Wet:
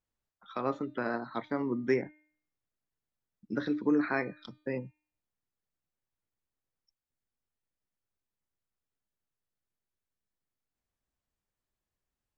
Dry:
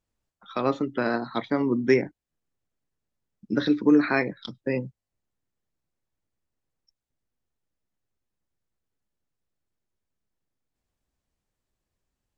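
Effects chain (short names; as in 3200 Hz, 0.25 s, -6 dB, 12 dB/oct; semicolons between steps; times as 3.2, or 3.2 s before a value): bell 1400 Hz +4 dB 2.1 oct; de-hum 303.7 Hz, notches 15; dynamic EQ 3500 Hz, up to -7 dB, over -42 dBFS, Q 0.93; gain -8.5 dB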